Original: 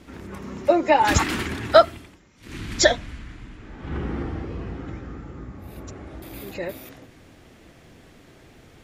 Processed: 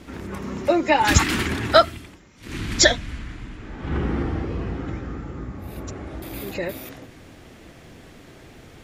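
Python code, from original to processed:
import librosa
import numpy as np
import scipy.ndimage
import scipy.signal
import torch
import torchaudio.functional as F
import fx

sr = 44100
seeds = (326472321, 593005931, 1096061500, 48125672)

y = fx.dynamic_eq(x, sr, hz=650.0, q=0.71, threshold_db=-31.0, ratio=4.0, max_db=-7)
y = y * librosa.db_to_amplitude(4.5)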